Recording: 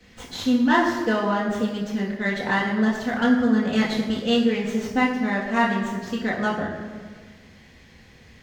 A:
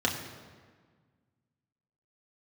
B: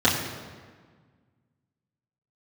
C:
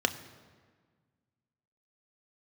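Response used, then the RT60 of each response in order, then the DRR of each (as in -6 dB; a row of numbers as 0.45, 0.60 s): B; 1.6, 1.6, 1.6 s; -2.0, -9.0, 8.0 dB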